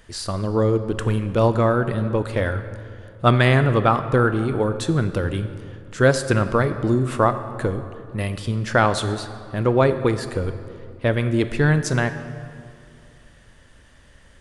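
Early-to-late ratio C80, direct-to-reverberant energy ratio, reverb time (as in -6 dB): 12.0 dB, 10.0 dB, 2.4 s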